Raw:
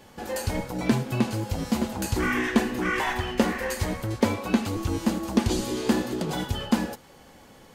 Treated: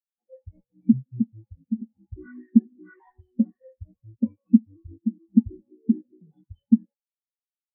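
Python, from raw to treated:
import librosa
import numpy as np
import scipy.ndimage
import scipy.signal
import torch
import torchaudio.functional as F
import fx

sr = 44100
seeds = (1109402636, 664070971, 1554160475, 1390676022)

y = fx.spectral_expand(x, sr, expansion=4.0)
y = F.gain(torch.from_numpy(y), 4.0).numpy()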